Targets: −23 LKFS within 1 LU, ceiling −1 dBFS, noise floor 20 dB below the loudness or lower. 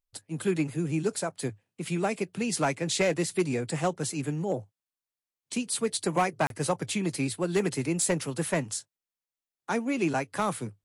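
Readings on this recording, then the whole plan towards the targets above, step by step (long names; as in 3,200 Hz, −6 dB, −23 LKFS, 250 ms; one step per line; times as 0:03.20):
share of clipped samples 0.4%; peaks flattened at −18.0 dBFS; number of dropouts 1; longest dropout 32 ms; integrated loudness −29.5 LKFS; sample peak −18.0 dBFS; target loudness −23.0 LKFS
→ clipped peaks rebuilt −18 dBFS
repair the gap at 0:06.47, 32 ms
level +6.5 dB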